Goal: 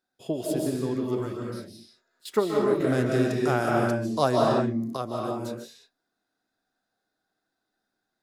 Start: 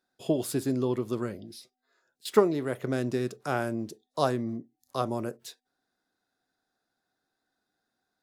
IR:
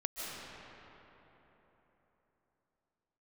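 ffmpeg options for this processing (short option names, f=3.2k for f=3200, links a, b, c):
-filter_complex "[1:a]atrim=start_sample=2205,afade=t=out:st=0.41:d=0.01,atrim=end_sample=18522[a];[0:a][a]afir=irnorm=-1:irlink=0,asettb=1/sr,asplit=3[b][c][d];[b]atrim=end=2.804[e];[c]atrim=start=2.8:end=4.97,asetpts=PTS-STARTPTS,afade=t=in:d=0.004:c=qsin,afade=t=out:st=2.166:d=0.004:c=qsin,acontrast=52[f];[d]atrim=start=4.966[g];[e][f]acrossfade=d=0.004:c1=hsin:c2=qsin[h];[h][g]acrossfade=d=0.004:c1=qsin:c2=hsin,volume=-1dB"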